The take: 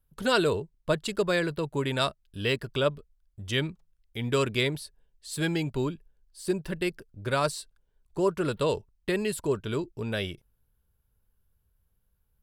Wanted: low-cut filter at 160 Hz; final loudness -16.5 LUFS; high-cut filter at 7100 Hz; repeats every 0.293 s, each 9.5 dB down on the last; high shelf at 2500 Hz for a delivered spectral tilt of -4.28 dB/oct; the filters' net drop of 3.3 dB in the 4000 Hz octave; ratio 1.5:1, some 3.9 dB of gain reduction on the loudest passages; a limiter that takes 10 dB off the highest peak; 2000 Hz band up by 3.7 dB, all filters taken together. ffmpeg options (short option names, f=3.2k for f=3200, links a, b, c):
-af "highpass=160,lowpass=7.1k,equalizer=f=2k:t=o:g=8,highshelf=f=2.5k:g=-4.5,equalizer=f=4k:t=o:g=-3.5,acompressor=threshold=-30dB:ratio=1.5,alimiter=limit=-24dB:level=0:latency=1,aecho=1:1:293|586|879|1172:0.335|0.111|0.0365|0.012,volume=19.5dB"